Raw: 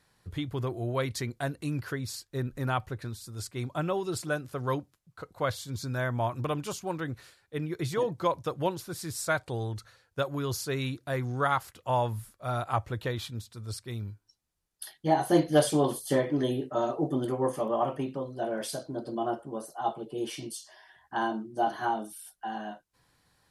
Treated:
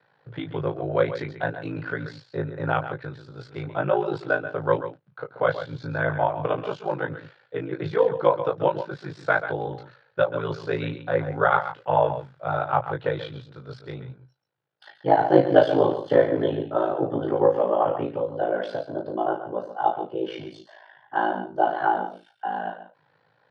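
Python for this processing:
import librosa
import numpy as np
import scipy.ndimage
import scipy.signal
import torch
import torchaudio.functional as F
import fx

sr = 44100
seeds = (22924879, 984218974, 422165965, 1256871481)

p1 = fx.peak_eq(x, sr, hz=520.0, db=9.5, octaves=0.68)
p2 = fx.doubler(p1, sr, ms=23.0, db=-5)
p3 = p2 + fx.echo_single(p2, sr, ms=134, db=-11.0, dry=0)
p4 = p3 * np.sin(2.0 * np.pi * 27.0 * np.arange(len(p3)) / sr)
p5 = fx.cabinet(p4, sr, low_hz=120.0, low_slope=24, high_hz=3600.0, hz=(130.0, 220.0, 830.0, 1500.0), db=(7, -9, 6, 8))
y = F.gain(torch.from_numpy(p5), 2.5).numpy()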